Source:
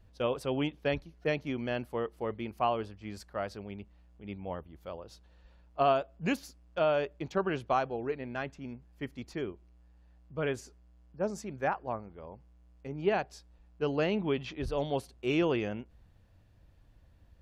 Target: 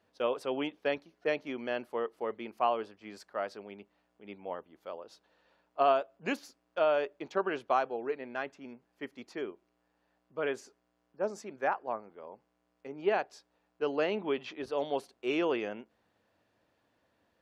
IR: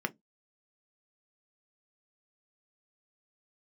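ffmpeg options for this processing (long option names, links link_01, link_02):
-filter_complex "[0:a]highpass=320,highshelf=frequency=8000:gain=-8.5,asplit=2[link_01][link_02];[1:a]atrim=start_sample=2205,lowpass=2600[link_03];[link_02][link_03]afir=irnorm=-1:irlink=0,volume=-20.5dB[link_04];[link_01][link_04]amix=inputs=2:normalize=0"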